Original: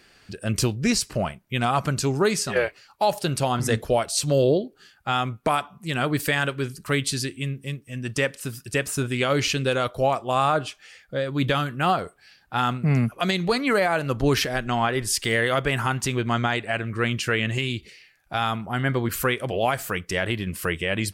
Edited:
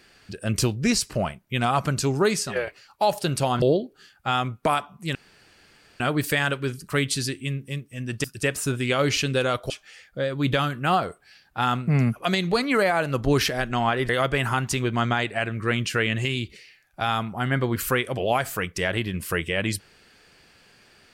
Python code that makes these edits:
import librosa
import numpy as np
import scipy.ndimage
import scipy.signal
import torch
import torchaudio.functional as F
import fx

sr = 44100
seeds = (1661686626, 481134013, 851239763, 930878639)

y = fx.edit(x, sr, fx.fade_out_to(start_s=2.32, length_s=0.35, floor_db=-6.5),
    fx.cut(start_s=3.62, length_s=0.81),
    fx.insert_room_tone(at_s=5.96, length_s=0.85),
    fx.cut(start_s=8.2, length_s=0.35),
    fx.cut(start_s=10.01, length_s=0.65),
    fx.cut(start_s=15.05, length_s=0.37), tone=tone)